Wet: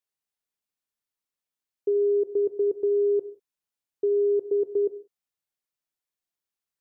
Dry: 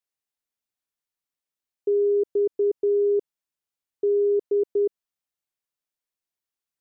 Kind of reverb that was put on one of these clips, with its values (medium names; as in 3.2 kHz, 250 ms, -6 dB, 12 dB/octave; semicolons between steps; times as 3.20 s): gated-style reverb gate 210 ms falling, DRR 11.5 dB; trim -1.5 dB